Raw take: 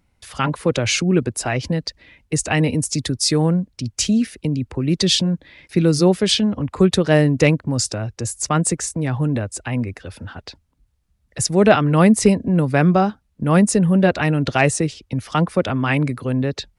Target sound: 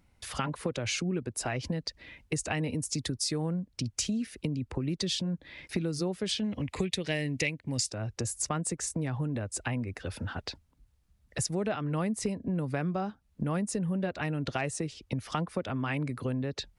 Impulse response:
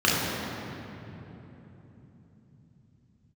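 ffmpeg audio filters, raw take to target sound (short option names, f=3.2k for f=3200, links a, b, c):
-filter_complex "[0:a]asettb=1/sr,asplit=3[a][b][c];[a]atrim=end=6.444[d];[b]atrim=start=6.44:end=7.9,asetpts=PTS-STARTPTS,afade=t=in:d=0.004:c=qsin,afade=t=out:st=1.456:d=0.004:c=qsin,highshelf=f=1.7k:t=q:w=3:g=7.5[e];[c]atrim=start=7.896[f];[d][e]acrossfade=d=0.004:c1=hsin:c2=qsin[g];[g][f]acrossfade=d=0.004:c1=qsin:c2=hsin,acompressor=threshold=-28dB:ratio=6,volume=-1.5dB"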